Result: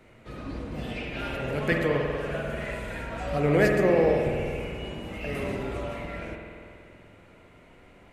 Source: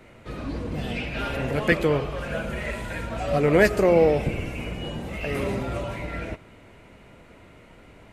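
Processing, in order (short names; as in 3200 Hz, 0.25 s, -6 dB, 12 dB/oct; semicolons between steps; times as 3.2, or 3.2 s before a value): spring tank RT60 2.3 s, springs 48 ms, chirp 60 ms, DRR 1.5 dB; gain -5.5 dB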